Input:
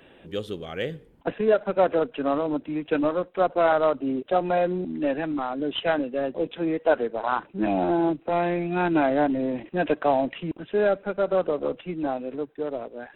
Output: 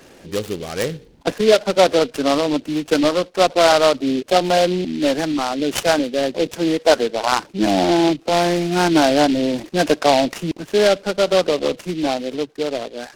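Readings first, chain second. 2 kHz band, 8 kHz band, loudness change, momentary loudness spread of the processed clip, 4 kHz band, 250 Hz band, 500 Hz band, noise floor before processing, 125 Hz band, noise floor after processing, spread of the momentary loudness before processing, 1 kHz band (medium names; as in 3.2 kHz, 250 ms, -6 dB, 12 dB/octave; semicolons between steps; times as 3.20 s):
+8.0 dB, no reading, +7.5 dB, 10 LU, +16.5 dB, +7.0 dB, +6.5 dB, -54 dBFS, +7.0 dB, -47 dBFS, 10 LU, +6.5 dB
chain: delay time shaken by noise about 3.1 kHz, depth 0.069 ms; trim +7 dB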